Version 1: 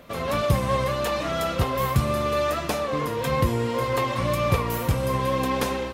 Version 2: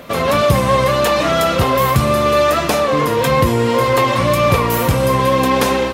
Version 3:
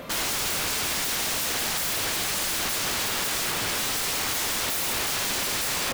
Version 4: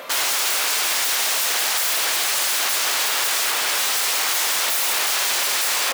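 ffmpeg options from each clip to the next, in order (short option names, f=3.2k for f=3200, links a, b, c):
-filter_complex "[0:a]asplit=2[a][b];[b]alimiter=limit=-19.5dB:level=0:latency=1,volume=1dB[c];[a][c]amix=inputs=2:normalize=0,lowshelf=f=73:g=-9.5,volume=6dB"
-filter_complex "[0:a]asplit=2[a][b];[b]alimiter=limit=-9dB:level=0:latency=1:release=191,volume=0dB[c];[a][c]amix=inputs=2:normalize=0,aeval=exprs='(mod(5.01*val(0)+1,2)-1)/5.01':c=same,volume=-8.5dB"
-af "highpass=610,volume=6.5dB"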